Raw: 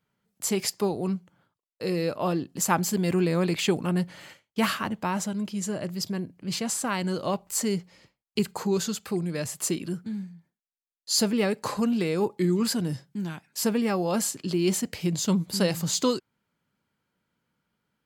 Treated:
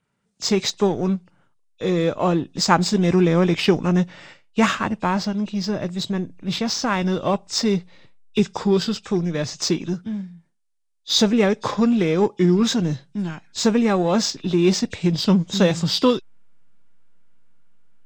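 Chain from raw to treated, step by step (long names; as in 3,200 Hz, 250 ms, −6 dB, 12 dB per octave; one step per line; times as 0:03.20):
hearing-aid frequency compression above 2,400 Hz 1.5 to 1
in parallel at −5.5 dB: slack as between gear wheels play −25 dBFS
on the sum: level +4 dB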